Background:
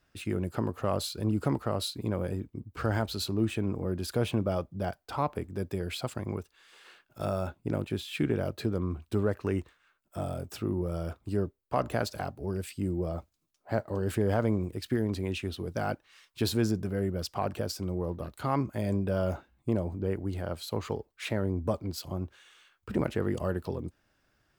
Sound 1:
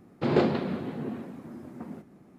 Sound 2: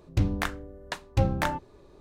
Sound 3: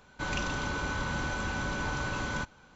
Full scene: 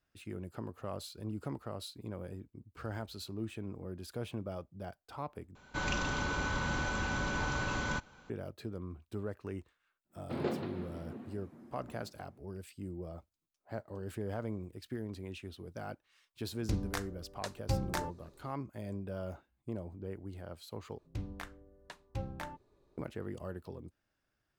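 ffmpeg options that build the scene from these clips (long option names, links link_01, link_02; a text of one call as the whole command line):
ffmpeg -i bed.wav -i cue0.wav -i cue1.wav -i cue2.wav -filter_complex "[2:a]asplit=2[link_01][link_02];[0:a]volume=-11.5dB[link_03];[link_01]highshelf=frequency=3900:width_type=q:width=1.5:gain=6[link_04];[link_03]asplit=3[link_05][link_06][link_07];[link_05]atrim=end=5.554[link_08];[3:a]atrim=end=2.75,asetpts=PTS-STARTPTS,volume=-1.5dB[link_09];[link_06]atrim=start=8.296:end=20.984[link_10];[link_02]atrim=end=2,asetpts=PTS-STARTPTS,volume=-15.5dB[link_11];[link_07]atrim=start=22.976[link_12];[1:a]atrim=end=2.38,asetpts=PTS-STARTPTS,volume=-12dB,afade=type=in:duration=0.1,afade=type=out:start_time=2.28:duration=0.1,adelay=10080[link_13];[link_04]atrim=end=2,asetpts=PTS-STARTPTS,volume=-9dB,afade=type=in:duration=0.004:curve=hsin,afade=type=out:start_time=1.996:duration=0.004:curve=hsin,adelay=728532S[link_14];[link_08][link_09]acrossfade=duration=0.004:curve1=hsin:curve2=hsin[link_15];[link_15][link_10]acrossfade=duration=0.004:curve1=hsin:curve2=hsin[link_16];[link_16][link_11]acrossfade=duration=0.004:curve1=hsin:curve2=hsin[link_17];[link_17][link_12]acrossfade=duration=0.004:curve1=hsin:curve2=hsin[link_18];[link_18][link_13][link_14]amix=inputs=3:normalize=0" out.wav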